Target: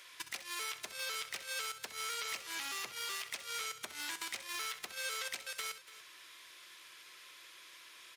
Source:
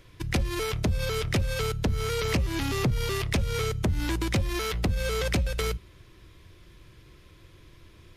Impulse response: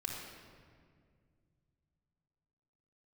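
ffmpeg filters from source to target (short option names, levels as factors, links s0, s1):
-filter_complex "[0:a]highpass=1200,equalizer=f=8500:t=o:w=1.2:g=4,acompressor=threshold=0.00631:ratio=4,asoftclip=type=hard:threshold=0.0119,asplit=2[s0][s1];[s1]aecho=0:1:65|289:0.251|0.141[s2];[s0][s2]amix=inputs=2:normalize=0,volume=1.88"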